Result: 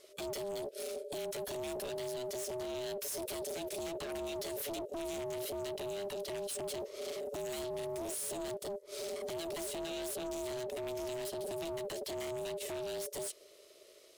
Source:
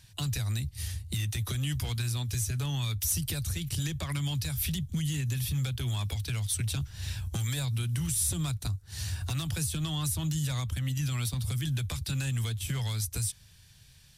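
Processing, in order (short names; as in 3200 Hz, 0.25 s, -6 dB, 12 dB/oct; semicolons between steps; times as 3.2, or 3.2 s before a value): hard clip -35 dBFS, distortion -8 dB; ring modulator 500 Hz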